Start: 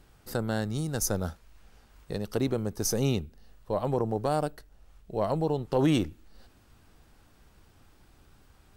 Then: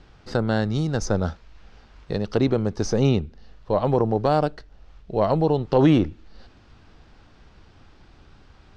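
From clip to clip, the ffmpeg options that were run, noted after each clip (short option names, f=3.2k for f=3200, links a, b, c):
-filter_complex "[0:a]lowpass=f=5.4k:w=0.5412,lowpass=f=5.4k:w=1.3066,acrossover=split=1800[a][b];[b]alimiter=level_in=7.5dB:limit=-24dB:level=0:latency=1:release=251,volume=-7.5dB[c];[a][c]amix=inputs=2:normalize=0,volume=7.5dB"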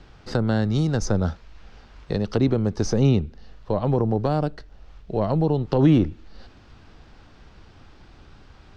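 -filter_complex "[0:a]acrossover=split=300[a][b];[b]acompressor=threshold=-29dB:ratio=2.5[c];[a][c]amix=inputs=2:normalize=0,volume=2.5dB"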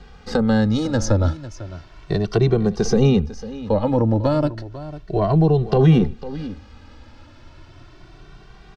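-filter_complex "[0:a]aecho=1:1:499:0.168,asplit=2[a][b];[b]adelay=2.1,afreqshift=0.33[c];[a][c]amix=inputs=2:normalize=1,volume=7dB"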